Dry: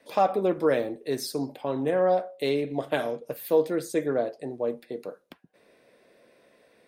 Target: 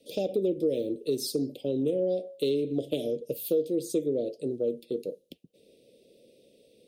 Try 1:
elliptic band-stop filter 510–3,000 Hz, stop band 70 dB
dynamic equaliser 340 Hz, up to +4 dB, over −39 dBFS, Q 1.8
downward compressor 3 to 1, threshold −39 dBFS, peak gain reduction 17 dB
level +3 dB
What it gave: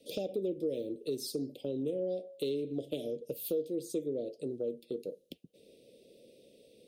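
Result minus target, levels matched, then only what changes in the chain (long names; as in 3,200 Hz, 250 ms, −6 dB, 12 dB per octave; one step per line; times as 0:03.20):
downward compressor: peak gain reduction +7 dB
change: downward compressor 3 to 1, threshold −28.5 dBFS, peak gain reduction 10 dB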